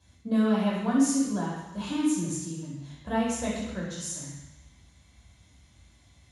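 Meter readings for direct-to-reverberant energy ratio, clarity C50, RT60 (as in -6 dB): -6.5 dB, 0.5 dB, 1.1 s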